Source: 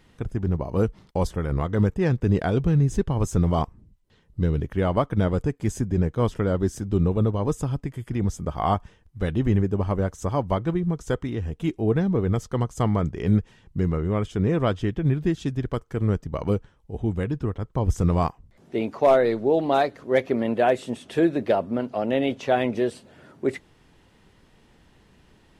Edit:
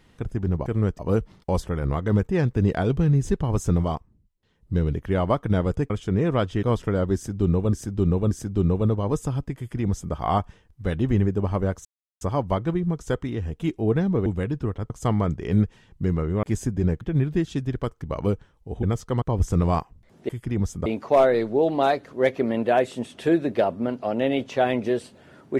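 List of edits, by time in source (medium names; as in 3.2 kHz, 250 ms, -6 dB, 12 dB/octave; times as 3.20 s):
3.43–4.42 s: dip -9 dB, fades 0.28 s
5.57–6.15 s: swap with 14.18–14.91 s
6.67–7.25 s: loop, 3 plays
7.93–8.50 s: copy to 18.77 s
10.21 s: insert silence 0.36 s
12.26–12.65 s: swap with 17.06–17.70 s
15.92–16.25 s: move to 0.66 s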